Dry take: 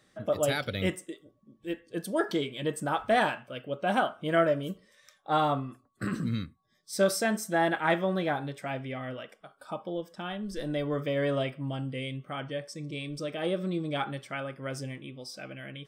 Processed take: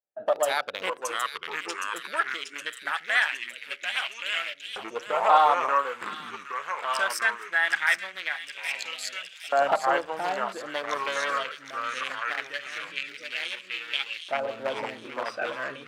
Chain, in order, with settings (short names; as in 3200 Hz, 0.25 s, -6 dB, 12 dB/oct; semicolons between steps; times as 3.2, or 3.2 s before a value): Wiener smoothing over 41 samples; recorder AGC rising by 15 dB/s; expander -51 dBFS; in parallel at -1.5 dB: limiter -20.5 dBFS, peak gain reduction 7.5 dB; on the sum: echoes that change speed 0.54 s, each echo -3 st, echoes 2; on a send: thin delay 0.766 s, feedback 59%, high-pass 2500 Hz, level -6.5 dB; on the sum: LFO high-pass saw up 0.21 Hz 740–2900 Hz